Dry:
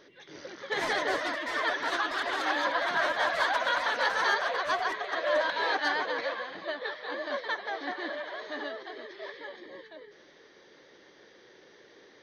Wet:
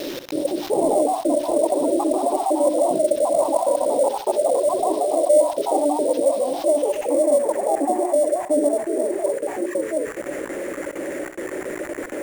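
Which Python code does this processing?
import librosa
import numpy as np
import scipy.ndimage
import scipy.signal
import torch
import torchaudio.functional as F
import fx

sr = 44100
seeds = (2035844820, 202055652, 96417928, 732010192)

p1 = fx.spec_dropout(x, sr, seeds[0], share_pct=33)
p2 = scipy.signal.sosfilt(scipy.signal.cheby2(4, 60, [1700.0, 3800.0], 'bandstop', fs=sr, output='sos'), p1)
p3 = fx.hum_notches(p2, sr, base_hz=60, count=7)
p4 = fx.rider(p3, sr, range_db=5, speed_s=0.5)
p5 = p3 + (p4 * 10.0 ** (-1.0 / 20.0))
p6 = fx.small_body(p5, sr, hz=(310.0, 570.0), ring_ms=25, db=15)
p7 = fx.quant_dither(p6, sr, seeds[1], bits=8, dither='none')
p8 = fx.filter_sweep_lowpass(p7, sr, from_hz=3900.0, to_hz=1900.0, start_s=6.69, end_s=7.28, q=3.9)
p9 = fx.sample_hold(p8, sr, seeds[2], rate_hz=9100.0, jitter_pct=0)
p10 = p9 + fx.room_flutter(p9, sr, wall_m=11.1, rt60_s=0.24, dry=0)
p11 = fx.env_flatten(p10, sr, amount_pct=50)
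y = p11 * 10.0 ** (-5.5 / 20.0)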